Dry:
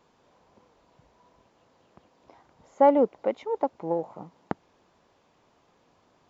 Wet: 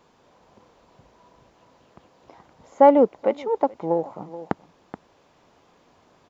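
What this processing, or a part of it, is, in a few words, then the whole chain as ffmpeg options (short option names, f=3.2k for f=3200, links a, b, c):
ducked delay: -filter_complex "[0:a]asplit=3[a][b][c];[b]adelay=427,volume=-6dB[d];[c]apad=whole_len=296450[e];[d][e]sidechaincompress=threshold=-39dB:ratio=8:attack=32:release=721[f];[a][f]amix=inputs=2:normalize=0,volume=5dB"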